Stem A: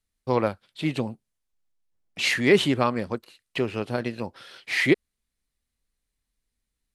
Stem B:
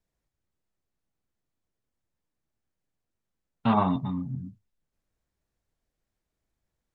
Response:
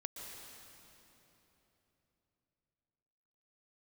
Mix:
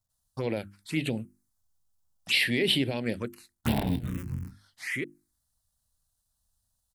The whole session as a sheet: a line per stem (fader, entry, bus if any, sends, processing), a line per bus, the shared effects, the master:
0.0 dB, 0.10 s, no send, peak limiter -16 dBFS, peak gain reduction 10 dB; auto duck -20 dB, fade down 0.20 s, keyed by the second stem
-2.0 dB, 0.00 s, no send, cycle switcher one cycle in 3, muted; peaking EQ 90 Hz +9.5 dB 0.89 oct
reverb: none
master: treble shelf 3.5 kHz +9.5 dB; hum notches 50/100/150/200/250/300/350 Hz; touch-sensitive phaser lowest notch 380 Hz, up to 1.2 kHz, full sweep at -23 dBFS

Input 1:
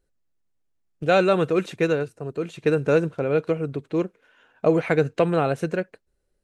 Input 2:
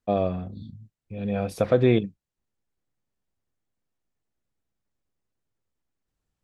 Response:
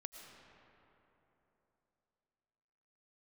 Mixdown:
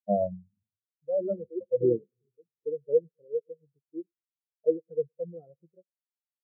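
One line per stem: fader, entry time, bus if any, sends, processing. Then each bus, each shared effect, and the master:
-8.5 dB, 0.00 s, no send, echo send -15 dB, de-esser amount 75%
-2.5 dB, 0.00 s, send -8 dB, no echo send, auto duck -10 dB, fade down 0.50 s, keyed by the first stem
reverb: on, RT60 3.4 s, pre-delay 70 ms
echo: feedback delay 107 ms, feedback 58%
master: treble shelf 2.1 kHz -9.5 dB; spectral contrast expander 4:1

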